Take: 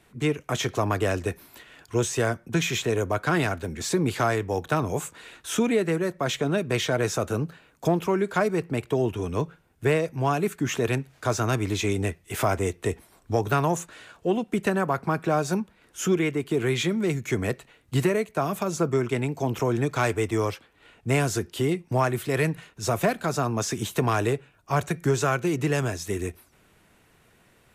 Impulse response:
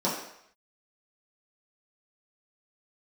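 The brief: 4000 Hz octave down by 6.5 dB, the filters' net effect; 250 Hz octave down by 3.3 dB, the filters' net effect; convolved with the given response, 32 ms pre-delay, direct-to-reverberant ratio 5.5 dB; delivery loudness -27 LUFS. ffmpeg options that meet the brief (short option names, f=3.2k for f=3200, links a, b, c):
-filter_complex "[0:a]equalizer=f=250:t=o:g=-5,equalizer=f=4k:t=o:g=-9,asplit=2[a][b];[1:a]atrim=start_sample=2205,adelay=32[c];[b][c]afir=irnorm=-1:irlink=0,volume=-17dB[d];[a][d]amix=inputs=2:normalize=0,volume=-0.5dB"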